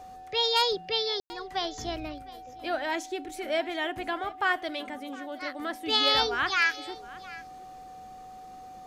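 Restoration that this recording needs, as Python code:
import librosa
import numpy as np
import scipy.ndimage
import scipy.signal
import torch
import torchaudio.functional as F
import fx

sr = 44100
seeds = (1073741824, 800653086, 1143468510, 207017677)

y = fx.notch(x, sr, hz=750.0, q=30.0)
y = fx.fix_ambience(y, sr, seeds[0], print_start_s=8.07, print_end_s=8.57, start_s=1.2, end_s=1.3)
y = fx.fix_echo_inverse(y, sr, delay_ms=711, level_db=-19.5)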